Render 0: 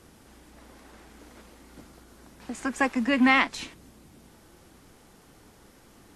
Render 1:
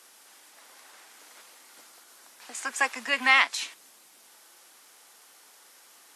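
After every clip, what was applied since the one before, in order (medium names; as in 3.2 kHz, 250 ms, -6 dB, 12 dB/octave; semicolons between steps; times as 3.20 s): high-pass 770 Hz 12 dB/octave; treble shelf 3 kHz +8 dB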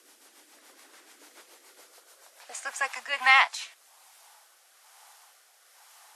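rotary cabinet horn 7 Hz, later 1.1 Hz, at 2.41 s; high-pass sweep 290 Hz -> 790 Hz, 1.22–2.85 s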